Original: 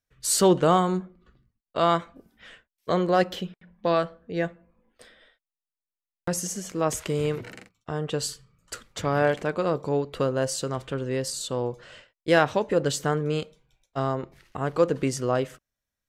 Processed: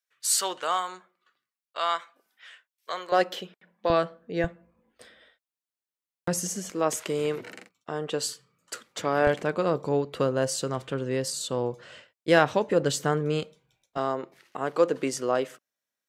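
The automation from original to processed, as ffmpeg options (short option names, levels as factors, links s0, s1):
-af "asetnsamples=n=441:p=0,asendcmd='3.12 highpass f 360;3.9 highpass f 160;4.44 highpass f 68;6.7 highpass f 240;9.27 highpass f 110;13.97 highpass f 280',highpass=1100"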